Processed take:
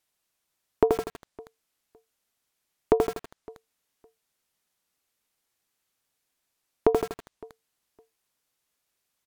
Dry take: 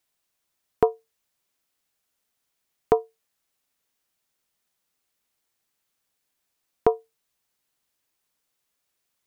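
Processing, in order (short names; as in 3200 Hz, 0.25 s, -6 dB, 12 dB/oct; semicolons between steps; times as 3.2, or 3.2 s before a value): treble ducked by the level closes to 550 Hz, closed at -24 dBFS; on a send: feedback echo 0.561 s, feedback 18%, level -23.5 dB; on the sum: lo-fi delay 81 ms, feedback 55%, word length 6-bit, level -3 dB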